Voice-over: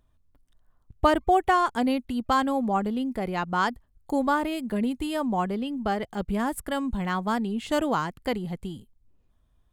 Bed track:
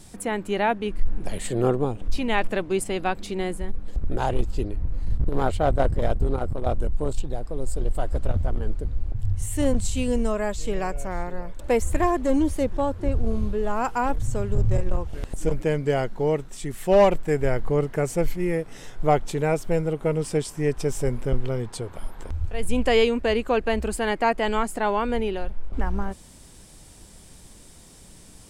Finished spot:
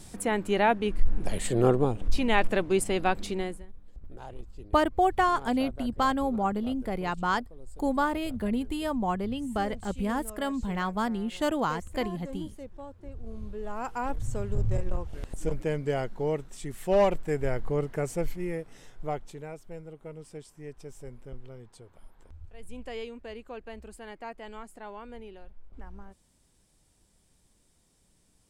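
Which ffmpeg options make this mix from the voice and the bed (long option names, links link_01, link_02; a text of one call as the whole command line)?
ffmpeg -i stem1.wav -i stem2.wav -filter_complex "[0:a]adelay=3700,volume=-2.5dB[link_01];[1:a]volume=12.5dB,afade=type=out:start_time=3.25:duration=0.41:silence=0.11885,afade=type=in:start_time=13.15:duration=1.16:silence=0.223872,afade=type=out:start_time=18.07:duration=1.46:silence=0.223872[link_02];[link_01][link_02]amix=inputs=2:normalize=0" out.wav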